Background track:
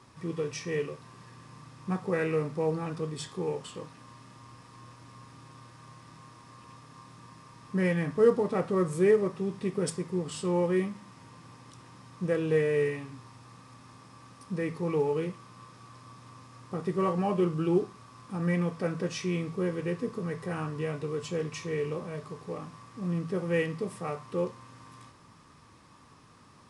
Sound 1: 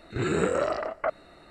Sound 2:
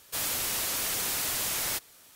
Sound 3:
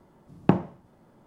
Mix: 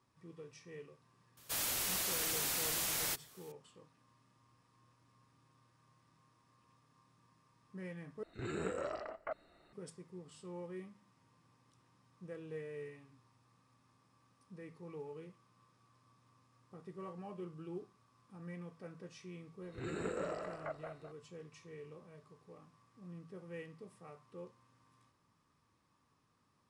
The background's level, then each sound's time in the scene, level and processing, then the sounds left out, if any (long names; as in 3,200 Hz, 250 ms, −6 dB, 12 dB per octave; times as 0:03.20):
background track −19.5 dB
0:01.37: mix in 2 −6 dB + gate on every frequency bin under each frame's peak −25 dB strong
0:08.23: overwrite with 1 −14 dB
0:19.62: mix in 1 −16 dB + feedback delay that plays each chunk backwards 105 ms, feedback 58%, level −5 dB
not used: 3